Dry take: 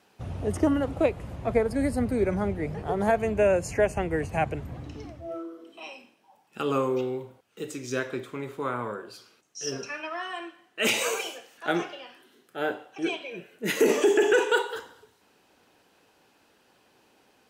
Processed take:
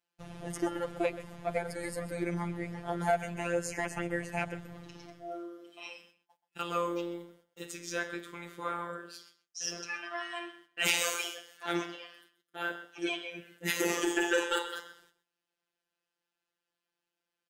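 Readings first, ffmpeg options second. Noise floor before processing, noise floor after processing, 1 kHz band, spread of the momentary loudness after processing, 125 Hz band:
−64 dBFS, below −85 dBFS, −5.0 dB, 18 LU, −8.0 dB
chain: -filter_complex "[0:a]agate=range=-22dB:threshold=-56dB:ratio=16:detection=peak,tiltshelf=frequency=810:gain=-4,asplit=2[link_01][link_02];[link_02]asoftclip=type=hard:threshold=-20dB,volume=-7dB[link_03];[link_01][link_03]amix=inputs=2:normalize=0,afftfilt=real='hypot(re,im)*cos(PI*b)':imag='0':win_size=1024:overlap=0.75,asplit=2[link_04][link_05];[link_05]adelay=128.3,volume=-14dB,highshelf=frequency=4000:gain=-2.89[link_06];[link_04][link_06]amix=inputs=2:normalize=0,volume=-5dB"

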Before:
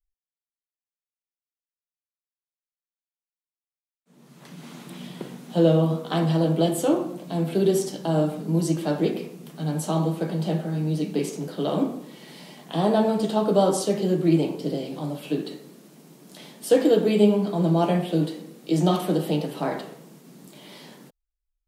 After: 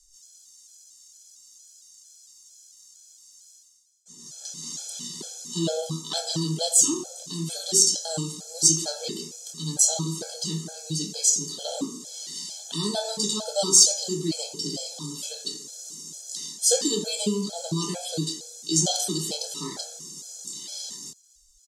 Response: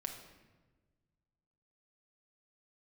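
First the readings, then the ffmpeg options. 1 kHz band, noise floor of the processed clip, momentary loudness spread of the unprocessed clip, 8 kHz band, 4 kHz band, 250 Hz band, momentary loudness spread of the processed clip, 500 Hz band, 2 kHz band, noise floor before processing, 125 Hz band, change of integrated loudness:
−9.5 dB, −56 dBFS, 18 LU, +18.5 dB, +10.0 dB, −9.0 dB, 17 LU, −9.5 dB, −8.0 dB, below −85 dBFS, −8.0 dB, −1.0 dB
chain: -filter_complex "[0:a]lowpass=frequency=6700:width_type=q:width=3.4,asplit=2[link_01][link_02];[link_02]adelay=25,volume=-8.5dB[link_03];[link_01][link_03]amix=inputs=2:normalize=0,areverse,acompressor=mode=upward:threshold=-39dB:ratio=2.5,areverse,aexciter=amount=9.9:drive=6.1:freq=3600,afftfilt=real='re*gt(sin(2*PI*2.2*pts/sr)*(1-2*mod(floor(b*sr/1024/440),2)),0)':imag='im*gt(sin(2*PI*2.2*pts/sr)*(1-2*mod(floor(b*sr/1024/440),2)),0)':win_size=1024:overlap=0.75,volume=-6.5dB"

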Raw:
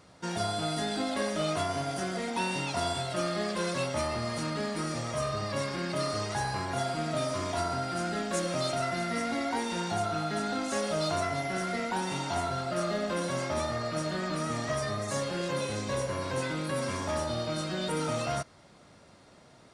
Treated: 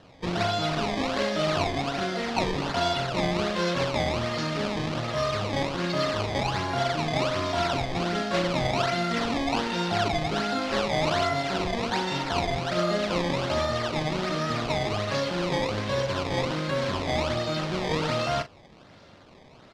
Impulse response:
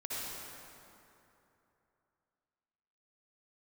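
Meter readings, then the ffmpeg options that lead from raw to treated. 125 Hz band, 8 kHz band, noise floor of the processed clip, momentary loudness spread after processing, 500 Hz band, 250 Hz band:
+5.0 dB, −2.0 dB, −52 dBFS, 3 LU, +4.5 dB, +4.5 dB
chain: -filter_complex "[0:a]acrusher=samples=18:mix=1:aa=0.000001:lfo=1:lforange=28.8:lforate=1.3,lowpass=frequency=4400:width_type=q:width=1.5,asplit=2[link_01][link_02];[link_02]adelay=40,volume=-12dB[link_03];[link_01][link_03]amix=inputs=2:normalize=0,volume=4dB"

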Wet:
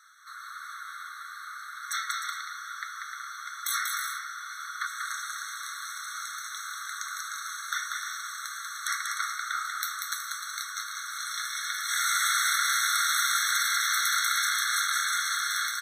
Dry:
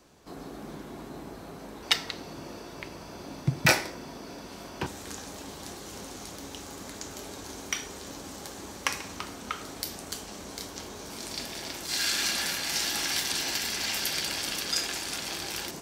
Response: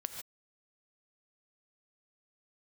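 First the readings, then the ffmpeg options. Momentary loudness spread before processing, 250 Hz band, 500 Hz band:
16 LU, below −40 dB, below −40 dB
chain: -af "afftfilt=real='re*lt(hypot(re,im),0.0631)':imag='im*lt(hypot(re,im),0.0631)':win_size=1024:overlap=0.75,equalizer=frequency=1400:width_type=o:width=0.41:gain=11.5,aecho=1:1:190|304|372.4|413.4|438.1:0.631|0.398|0.251|0.158|0.1,afftfilt=real='re*eq(mod(floor(b*sr/1024/1100),2),1)':imag='im*eq(mod(floor(b*sr/1024/1100),2),1)':win_size=1024:overlap=0.75,volume=5dB"

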